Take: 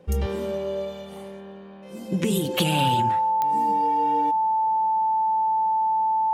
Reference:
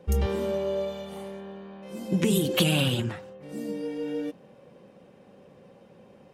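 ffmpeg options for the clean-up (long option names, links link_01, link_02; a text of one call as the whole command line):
ffmpeg -i in.wav -af "adeclick=threshold=4,bandreject=frequency=880:width=30" out.wav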